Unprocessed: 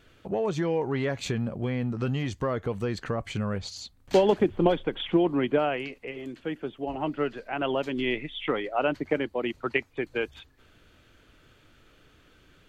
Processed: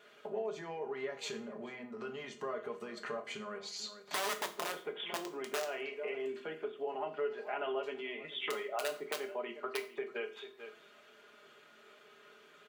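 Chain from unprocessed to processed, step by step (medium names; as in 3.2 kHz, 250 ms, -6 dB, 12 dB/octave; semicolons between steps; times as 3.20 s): comb 4.9 ms, depth 60%; delay 438 ms -21.5 dB; in parallel at -0.5 dB: peak limiter -20 dBFS, peak gain reduction 14 dB; on the sum: treble shelf 2.8 kHz -7 dB; integer overflow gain 11.5 dB; compression 6:1, threshold -31 dBFS, peak gain reduction 15 dB; high-pass 490 Hz 12 dB/octave; on a send at -3.5 dB: reverberation RT60 0.40 s, pre-delay 4 ms; on the sum: trim -4.5 dB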